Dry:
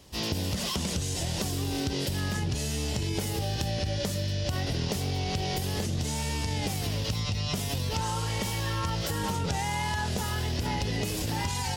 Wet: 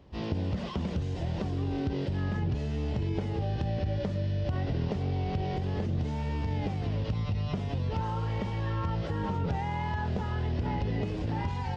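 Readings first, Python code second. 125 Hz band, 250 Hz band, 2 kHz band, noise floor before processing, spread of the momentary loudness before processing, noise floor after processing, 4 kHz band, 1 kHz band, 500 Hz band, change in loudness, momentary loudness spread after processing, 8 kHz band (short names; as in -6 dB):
+0.5 dB, 0.0 dB, -7.0 dB, -32 dBFS, 1 LU, -34 dBFS, -14.0 dB, -2.5 dB, -1.0 dB, -2.0 dB, 1 LU, under -25 dB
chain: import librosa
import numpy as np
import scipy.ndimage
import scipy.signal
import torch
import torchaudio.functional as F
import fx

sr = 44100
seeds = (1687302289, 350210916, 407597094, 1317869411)

y = fx.spacing_loss(x, sr, db_at_10k=40)
y = y * librosa.db_to_amplitude(1.0)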